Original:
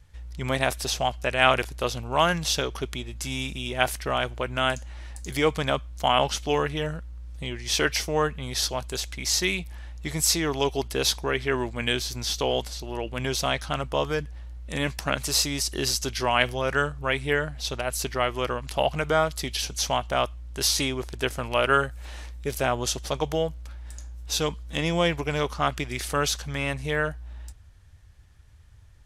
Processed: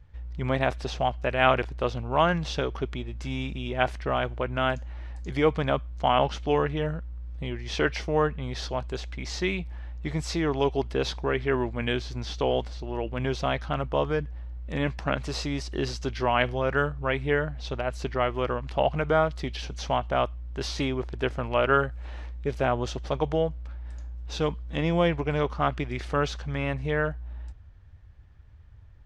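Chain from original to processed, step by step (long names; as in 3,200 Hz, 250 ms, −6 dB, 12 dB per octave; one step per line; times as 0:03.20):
head-to-tape spacing loss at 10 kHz 28 dB
level +2 dB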